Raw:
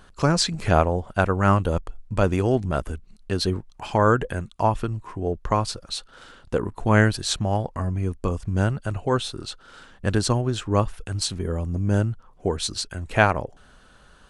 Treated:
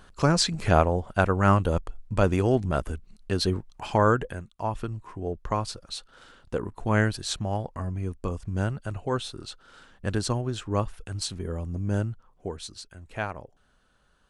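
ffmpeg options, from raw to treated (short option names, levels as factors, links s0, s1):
-af "volume=2,afade=t=out:st=3.98:d=0.57:silence=0.266073,afade=t=in:st=4.55:d=0.25:silence=0.421697,afade=t=out:st=12.03:d=0.7:silence=0.398107"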